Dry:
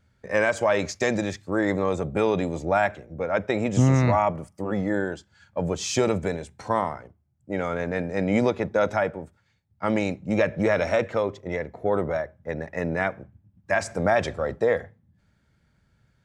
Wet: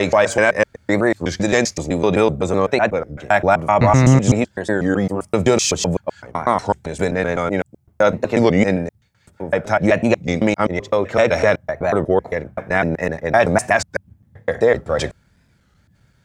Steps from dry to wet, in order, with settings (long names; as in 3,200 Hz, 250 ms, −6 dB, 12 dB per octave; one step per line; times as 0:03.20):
slices reordered back to front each 127 ms, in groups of 7
high-shelf EQ 5,300 Hz +5.5 dB
wow of a warped record 33 1/3 rpm, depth 160 cents
level +7.5 dB